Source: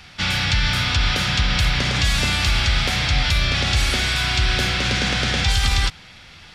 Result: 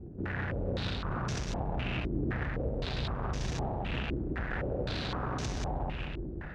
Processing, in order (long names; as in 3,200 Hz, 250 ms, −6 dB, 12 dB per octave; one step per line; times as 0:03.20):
running median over 41 samples
tube saturation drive 41 dB, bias 0.5
on a send: echo machine with several playback heads 185 ms, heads first and second, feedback 55%, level −7 dB
on the sum: low-pass on a step sequencer 3.9 Hz 350–6,100 Hz
level +5.5 dB